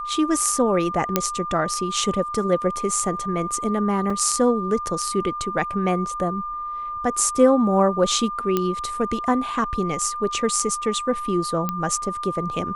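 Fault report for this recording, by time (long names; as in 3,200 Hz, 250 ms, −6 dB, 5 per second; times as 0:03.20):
whistle 1,200 Hz −27 dBFS
0:01.16: click −2 dBFS
0:04.10: drop-out 3.4 ms
0:08.57: click −8 dBFS
0:11.69: click −10 dBFS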